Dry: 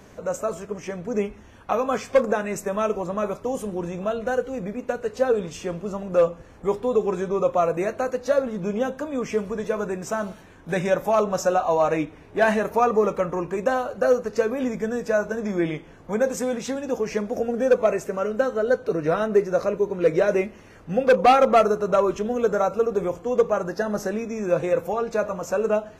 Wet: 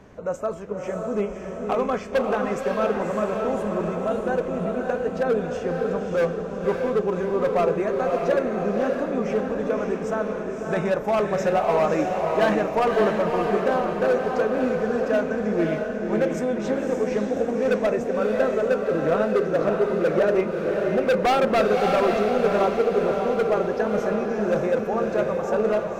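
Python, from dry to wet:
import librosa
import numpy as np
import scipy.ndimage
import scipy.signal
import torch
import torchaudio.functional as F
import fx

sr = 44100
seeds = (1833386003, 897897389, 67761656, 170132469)

y = fx.lowpass(x, sr, hz=2100.0, slope=6)
y = np.clip(y, -10.0 ** (-17.0 / 20.0), 10.0 ** (-17.0 / 20.0))
y = fx.echo_diffused(y, sr, ms=584, feedback_pct=54, wet_db=-3)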